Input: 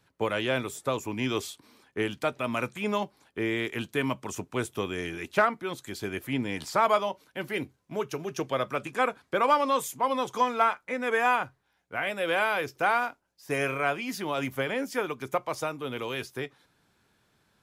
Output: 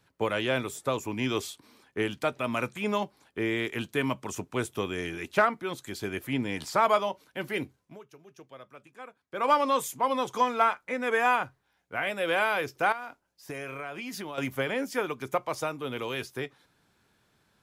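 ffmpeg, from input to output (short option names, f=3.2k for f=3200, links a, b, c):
-filter_complex "[0:a]asettb=1/sr,asplit=3[a][b][c];[a]atrim=end=12.924[d];[b]atrim=start=12.92:end=14.38,asetpts=PTS-STARTPTS,afade=t=in:d=0.004:c=qsin,afade=t=out:st=1.456:d=0.004:c=qsin,acompressor=threshold=-33dB:ratio=16:attack=3.2:release=140:knee=1:detection=peak[e];[c]atrim=start=14.376[f];[d][e]acrossfade=d=0.004:c1=hsin:c2=qsin[g];[g][f]acrossfade=d=0.004:c1=qsin:c2=hsin,asplit=3[h][i][j];[h]atrim=end=7.99,asetpts=PTS-STARTPTS,afade=t=out:st=7.78:d=0.21:silence=0.112202[k];[i]atrim=start=7.99:end=9.3,asetpts=PTS-STARTPTS,volume=-19dB[l];[j]atrim=start=9.3,asetpts=PTS-STARTPTS,afade=t=in:d=0.21:silence=0.112202[m];[k][l][m]concat=n=3:v=0:a=1"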